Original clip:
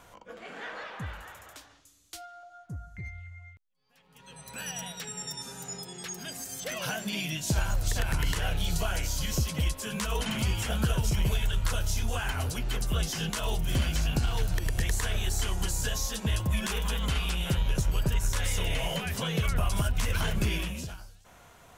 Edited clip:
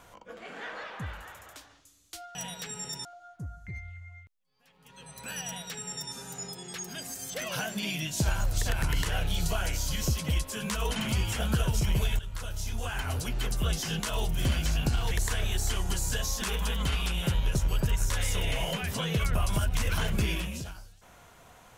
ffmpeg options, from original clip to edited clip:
-filter_complex "[0:a]asplit=6[a][b][c][d][e][f];[a]atrim=end=2.352[g];[b]atrim=start=4.728:end=5.432[h];[c]atrim=start=2.348:end=11.49,asetpts=PTS-STARTPTS,afade=t=out:st=9.138:d=0.004:c=hsin:silence=0.237137[i];[d]atrim=start=11.49:end=14.412,asetpts=PTS-STARTPTS,afade=t=in:d=1.06:silence=0.237137[j];[e]atrim=start=14.828:end=16.142[k];[f]atrim=start=16.648[l];[g][h]acrossfade=d=0.004:c1=hsin:c2=hsin[m];[i][j]concat=n=2:v=0:a=1[n];[m][n]acrossfade=d=0.004:c1=hsin:c2=hsin[o];[o][k]acrossfade=d=0.004:c1=hsin:c2=hsin[p];[p][l]acrossfade=d=0.004:c1=hsin:c2=hsin"

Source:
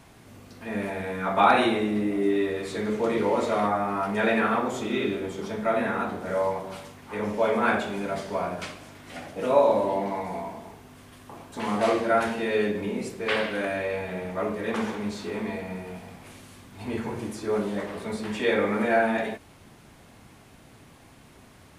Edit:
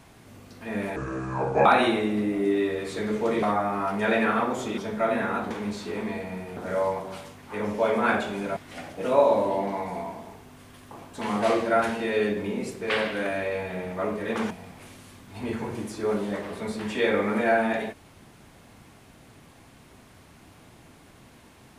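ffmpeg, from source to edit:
-filter_complex "[0:a]asplit=9[a][b][c][d][e][f][g][h][i];[a]atrim=end=0.964[j];[b]atrim=start=0.96:end=1.44,asetpts=PTS-STARTPTS,asetrate=30429,aresample=44100,atrim=end_sample=30678,asetpts=PTS-STARTPTS[k];[c]atrim=start=1.436:end=3.212[l];[d]atrim=start=3.578:end=4.932[m];[e]atrim=start=5.428:end=6.162[n];[f]atrim=start=14.888:end=15.952[o];[g]atrim=start=6.158:end=8.162[p];[h]atrim=start=8.948:end=14.892[q];[i]atrim=start=15.948[r];[j][k]acrossfade=d=0.004:c1=hsin:c2=hsin[s];[s][l]acrossfade=d=0.004:c1=hsin:c2=hsin[t];[t][m]acrossfade=d=0.004:c1=hsin:c2=hsin[u];[u][n]acrossfade=d=0.004:c1=hsin:c2=hsin[v];[v][o]acrossfade=d=0.004:c1=hsin:c2=hsin[w];[w][p]acrossfade=d=0.004:c1=hsin:c2=hsin[x];[x][q]acrossfade=d=0.004:c1=hsin:c2=hsin[y];[y][r]acrossfade=d=0.004:c1=hsin:c2=hsin"

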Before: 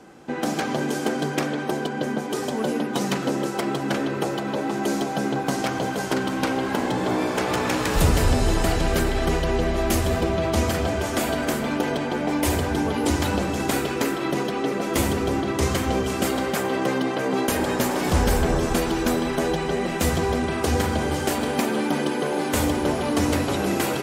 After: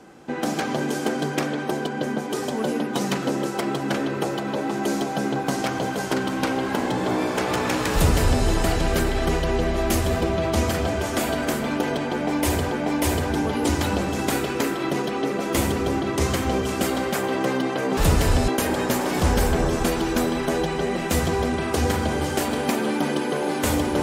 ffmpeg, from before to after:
-filter_complex "[0:a]asplit=4[a][b][c][d];[a]atrim=end=12.712[e];[b]atrim=start=12.118:end=17.382[f];[c]atrim=start=7.928:end=8.442[g];[d]atrim=start=17.378[h];[e][f]acrossfade=d=0.004:c1=hsin:c2=hsin[i];[i][g]acrossfade=d=0.004:c1=hsin:c2=hsin[j];[j][h]acrossfade=d=0.004:c1=hsin:c2=hsin"

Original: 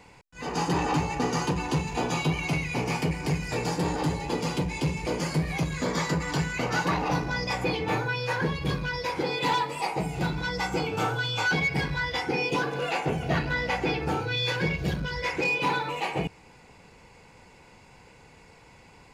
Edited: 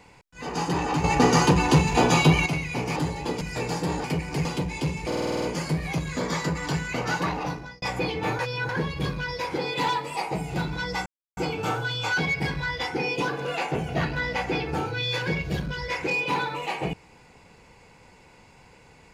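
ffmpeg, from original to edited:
-filter_complex "[0:a]asplit=18[a][b][c][d][e][f][g][h][i][j][k][l][m][n][o][p][q][r];[a]atrim=end=1.042[s];[b]atrim=start=1.038:end=2.462,asetpts=PTS-STARTPTS,volume=8.5dB[t];[c]atrim=start=2.458:end=2.962[u];[d]atrim=start=3.998:end=4.452[v];[e]atrim=start=3.368:end=4.002[w];[f]atrim=start=2.958:end=3.372[x];[g]atrim=start=4.448:end=5.122[y];[h]atrim=start=5.068:end=5.122[z];[i]atrim=start=5.068:end=5.122[aa];[j]atrim=start=5.068:end=5.122[ab];[k]atrim=start=5.068:end=5.122[ac];[l]atrim=start=5.068:end=5.122[ad];[m]atrim=start=5.068:end=5.122[ae];[n]atrim=start=5.068:end=7.47,asetpts=PTS-STARTPTS,afade=t=out:st=1.642:d=0.76:c=qsin[af];[o]atrim=start=7.47:end=8.042,asetpts=PTS-STARTPTS,afade=t=in:d=0.004:c=hsin[ag];[p]atrim=start=8.038:end=8.342,asetpts=PTS-STARTPTS,areverse[ah];[q]atrim=start=8.338:end=10.71,asetpts=PTS-STARTPTS,afade=t=out:st=2.368:d=0.004:c=hsin,apad=pad_dur=0.31[ai];[r]atrim=start=10.71,asetpts=PTS-STARTPTS,afade=t=in:d=0.004:c=hsin[aj];[s][t]acrossfade=d=0.004:c1=hsin:c2=hsin[ak];[ak][u]acrossfade=d=0.004:c1=hsin:c2=hsin[al];[al][v]acrossfade=d=0.004:c1=hsin:c2=hsin[am];[am][w]acrossfade=d=0.004:c1=hsin:c2=hsin[an];[an][x]acrossfade=d=0.004:c1=hsin:c2=hsin[ao];[ao][y]acrossfade=d=0.004:c1=hsin:c2=hsin[ap];[ap][z]acrossfade=d=0.004:c1=hsin:c2=hsin[aq];[aq][aa]acrossfade=d=0.004:c1=hsin:c2=hsin[ar];[ar][ab]acrossfade=d=0.004:c1=hsin:c2=hsin[as];[as][ac]acrossfade=d=0.004:c1=hsin:c2=hsin[at];[at][ad]acrossfade=d=0.004:c1=hsin:c2=hsin[au];[au][ae]acrossfade=d=0.004:c1=hsin:c2=hsin[av];[af][ag]concat=n=2:v=0:a=1[aw];[av][aw]acrossfade=d=0.004:c1=hsin:c2=hsin[ax];[ax][ah]acrossfade=d=0.004:c1=hsin:c2=hsin[ay];[ai][aj]concat=n=2:v=0:a=1[az];[ay][az]acrossfade=d=0.004:c1=hsin:c2=hsin"

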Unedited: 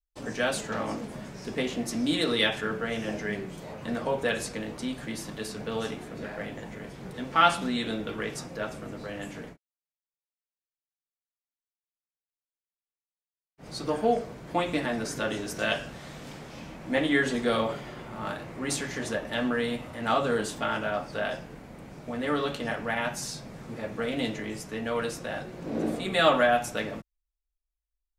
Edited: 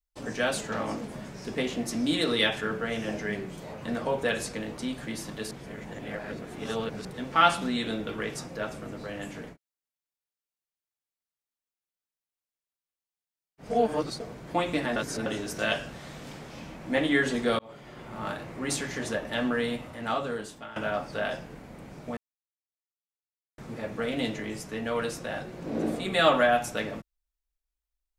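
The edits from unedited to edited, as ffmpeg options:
-filter_complex "[0:a]asplit=11[a][b][c][d][e][f][g][h][i][j][k];[a]atrim=end=5.512[l];[b]atrim=start=5.508:end=7.052,asetpts=PTS-STARTPTS,areverse[m];[c]atrim=start=7.048:end=13.702[n];[d]atrim=start=13.698:end=14.202,asetpts=PTS-STARTPTS,areverse[o];[e]atrim=start=14.198:end=14.962[p];[f]atrim=start=14.958:end=15.262,asetpts=PTS-STARTPTS,areverse[q];[g]atrim=start=15.258:end=17.59,asetpts=PTS-STARTPTS,afade=t=out:st=2.328:d=0.004:c=hsin[r];[h]atrim=start=17.59:end=20.76,asetpts=PTS-STARTPTS,afade=t=in:d=0.58,afade=t=out:st=2.07:d=1.1:silence=0.149624[s];[i]atrim=start=20.76:end=22.17,asetpts=PTS-STARTPTS,afade=t=in:d=0.004:c=hsin:silence=0.149624,afade=t=out:st=1.406:d=0.004:c=hsin[t];[j]atrim=start=22.17:end=23.58,asetpts=PTS-STARTPTS,volume=0[u];[k]atrim=start=23.58,asetpts=PTS-STARTPTS,afade=t=in:d=0.004:c=hsin[v];[l][m]acrossfade=d=0.004:c1=hsin:c2=hsin[w];[w][n]acrossfade=d=0.004:c1=hsin:c2=hsin[x];[x][o]acrossfade=d=0.004:c1=hsin:c2=hsin[y];[y][p]acrossfade=d=0.004:c1=hsin:c2=hsin[z];[z][q]acrossfade=d=0.004:c1=hsin:c2=hsin[aa];[r][s][t][u][v]concat=n=5:v=0:a=1[ab];[aa][ab]acrossfade=d=0.004:c1=hsin:c2=hsin"

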